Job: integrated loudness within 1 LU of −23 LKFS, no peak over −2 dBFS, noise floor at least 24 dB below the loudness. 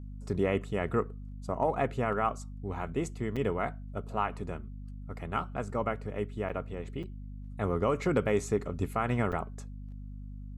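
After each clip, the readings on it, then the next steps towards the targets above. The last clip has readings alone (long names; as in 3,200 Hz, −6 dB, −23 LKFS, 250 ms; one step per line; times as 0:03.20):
number of dropouts 4; longest dropout 6.0 ms; mains hum 50 Hz; hum harmonics up to 250 Hz; level of the hum −39 dBFS; integrated loudness −32.5 LKFS; sample peak −15.0 dBFS; target loudness −23.0 LKFS
→ repair the gap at 0:03.36/0:06.49/0:07.03/0:09.32, 6 ms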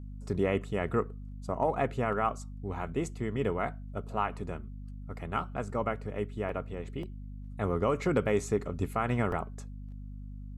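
number of dropouts 0; mains hum 50 Hz; hum harmonics up to 250 Hz; level of the hum −39 dBFS
→ mains-hum notches 50/100/150/200/250 Hz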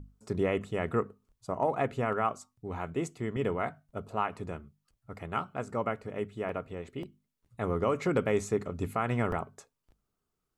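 mains hum none found; integrated loudness −33.0 LKFS; sample peak −15.0 dBFS; target loudness −23.0 LKFS
→ level +10 dB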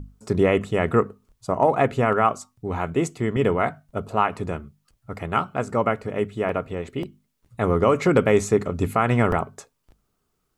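integrated loudness −23.0 LKFS; sample peak −5.0 dBFS; background noise floor −74 dBFS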